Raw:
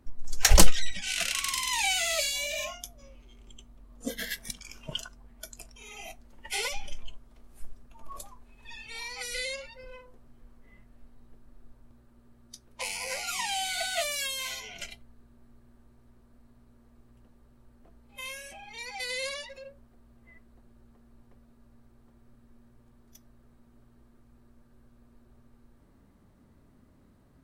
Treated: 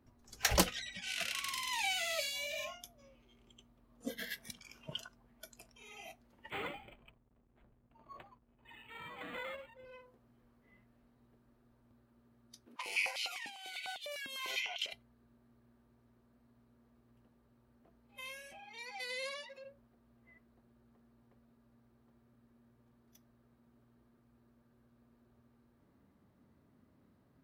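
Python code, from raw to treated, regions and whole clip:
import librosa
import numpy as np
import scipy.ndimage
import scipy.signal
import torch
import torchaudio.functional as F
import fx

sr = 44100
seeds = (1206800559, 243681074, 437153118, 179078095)

y = fx.chain(x, sr, fx.lowpass(hz=11000.0, slope=12),
    fx.backlash(play_db=-53.5),
    fx.resample_linear(factor=8), at=(6.5, 9.85))
y = fx.chain(y, sr, fx.peak_eq(hz=2800.0, db=3.5, octaves=0.53),
    fx.over_compress(threshold_db=-36.0, ratio=-0.5),
    fx.filter_held_highpass(hz=10.0, low_hz=270.0, high_hz=3400.0), at=(12.66, 14.93))
y = fx.chain(y, sr, fx.highpass(hz=140.0, slope=12),
    fx.peak_eq(hz=1100.0, db=3.0, octaves=0.29), at=(18.59, 19.64))
y = scipy.signal.sosfilt(scipy.signal.butter(2, 91.0, 'highpass', fs=sr, output='sos'), y)
y = fx.peak_eq(y, sr, hz=7900.0, db=-7.5, octaves=1.1)
y = y * librosa.db_to_amplitude(-6.5)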